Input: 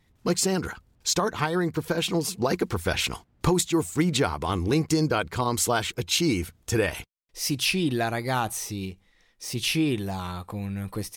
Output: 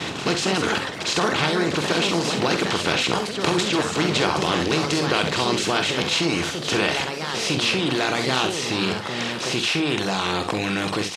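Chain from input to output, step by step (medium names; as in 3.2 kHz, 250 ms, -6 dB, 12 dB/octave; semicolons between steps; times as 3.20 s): spectral levelling over time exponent 0.4; reverb removal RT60 0.83 s; expander -36 dBFS; treble shelf 2.2 kHz +10 dB; in parallel at -0.5 dB: compressor with a negative ratio -27 dBFS, ratio -1; on the sum: ever faster or slower copies 239 ms, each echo +3 st, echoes 3, each echo -6 dB; band-pass 130–3700 Hz; on a send: early reflections 47 ms -9 dB, 67 ms -10.5 dB; on the sum: trim -6 dB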